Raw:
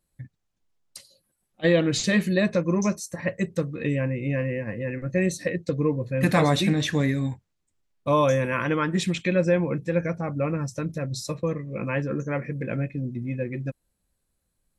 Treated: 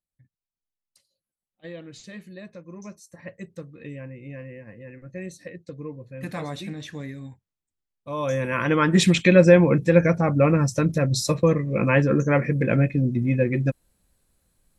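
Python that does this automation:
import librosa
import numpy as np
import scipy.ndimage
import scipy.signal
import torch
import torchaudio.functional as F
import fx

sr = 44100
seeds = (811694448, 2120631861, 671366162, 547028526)

y = fx.gain(x, sr, db=fx.line((2.63, -19.0), (3.19, -12.0), (8.08, -12.0), (8.34, -2.5), (9.01, 8.0)))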